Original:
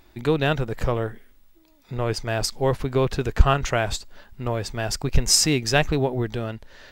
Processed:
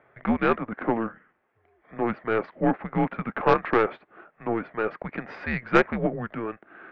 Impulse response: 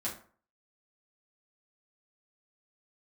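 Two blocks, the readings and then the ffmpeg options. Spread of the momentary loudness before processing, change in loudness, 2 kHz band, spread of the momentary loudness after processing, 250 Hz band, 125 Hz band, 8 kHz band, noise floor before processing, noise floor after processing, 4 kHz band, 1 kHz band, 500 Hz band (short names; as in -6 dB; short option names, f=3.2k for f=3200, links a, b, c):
13 LU, -3.0 dB, -0.5 dB, 13 LU, +1.0 dB, -10.5 dB, under -35 dB, -56 dBFS, -69 dBFS, -19.0 dB, +1.5 dB, -1.5 dB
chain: -af "highpass=f=500:t=q:w=0.5412,highpass=f=500:t=q:w=1.307,lowpass=f=2.3k:t=q:w=0.5176,lowpass=f=2.3k:t=q:w=0.7071,lowpass=f=2.3k:t=q:w=1.932,afreqshift=-230,aeval=exprs='0.422*(cos(1*acos(clip(val(0)/0.422,-1,1)))-cos(1*PI/2))+0.0531*(cos(4*acos(clip(val(0)/0.422,-1,1)))-cos(4*PI/2))':c=same,bandreject=f=980:w=16,volume=3.5dB"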